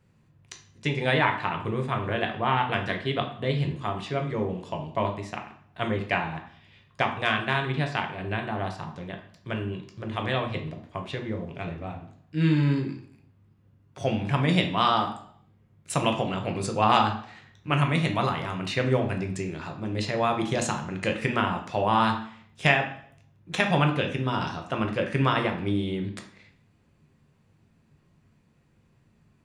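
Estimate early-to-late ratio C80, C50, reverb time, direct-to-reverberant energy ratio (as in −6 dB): 12.5 dB, 9.0 dB, 0.60 s, 3.0 dB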